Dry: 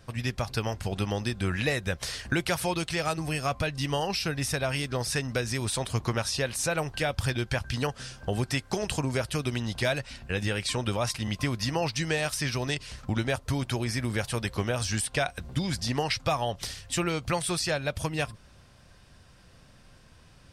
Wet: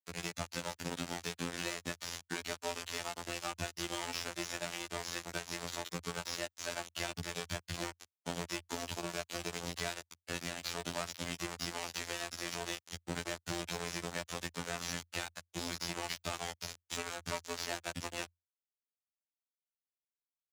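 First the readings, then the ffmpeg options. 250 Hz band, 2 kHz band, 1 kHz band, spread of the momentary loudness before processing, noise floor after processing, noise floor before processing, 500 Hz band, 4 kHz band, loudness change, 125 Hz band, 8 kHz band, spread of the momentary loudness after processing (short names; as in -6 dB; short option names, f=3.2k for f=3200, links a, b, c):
-12.5 dB, -9.0 dB, -9.0 dB, 4 LU, under -85 dBFS, -55 dBFS, -12.0 dB, -7.5 dB, -10.0 dB, -17.5 dB, -7.0 dB, 3 LU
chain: -filter_complex "[0:a]adynamicequalizer=threshold=0.00398:dfrequency=220:dqfactor=6.4:tfrequency=220:tqfactor=6.4:attack=5:release=100:ratio=0.375:range=2:mode=cutabove:tftype=bell,aecho=1:1:3.5:0.51,asubboost=boost=2.5:cutoff=55,acompressor=threshold=-29dB:ratio=16,aresample=16000,acrusher=bits=4:mix=0:aa=0.000001,aresample=44100,asoftclip=type=hard:threshold=-32.5dB,afreqshift=61,afftfilt=real='hypot(re,im)*cos(PI*b)':imag='0':win_size=2048:overlap=0.75,acrossover=split=550|5600[a][b][c];[c]asoftclip=type=tanh:threshold=-38dB[d];[a][b][d]amix=inputs=3:normalize=0,volume=5dB"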